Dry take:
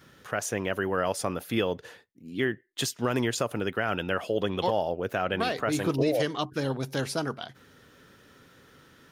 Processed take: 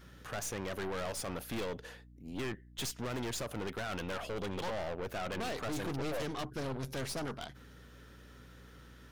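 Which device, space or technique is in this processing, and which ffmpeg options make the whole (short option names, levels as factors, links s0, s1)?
valve amplifier with mains hum: -af "aeval=exprs='(tanh(56.2*val(0)+0.6)-tanh(0.6))/56.2':c=same,aeval=exprs='val(0)+0.00178*(sin(2*PI*60*n/s)+sin(2*PI*2*60*n/s)/2+sin(2*PI*3*60*n/s)/3+sin(2*PI*4*60*n/s)/4+sin(2*PI*5*60*n/s)/5)':c=same"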